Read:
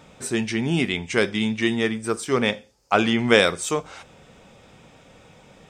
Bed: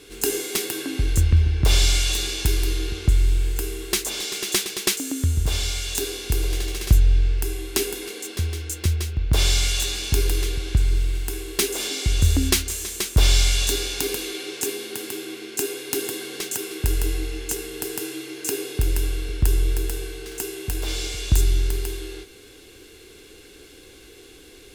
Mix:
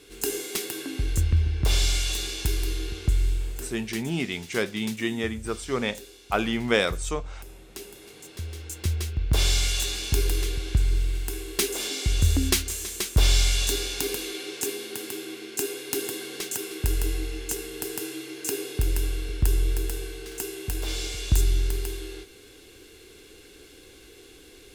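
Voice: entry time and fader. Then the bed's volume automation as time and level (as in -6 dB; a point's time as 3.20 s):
3.40 s, -6.0 dB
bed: 3.27 s -5 dB
4.16 s -18.5 dB
7.67 s -18.5 dB
9.05 s -3 dB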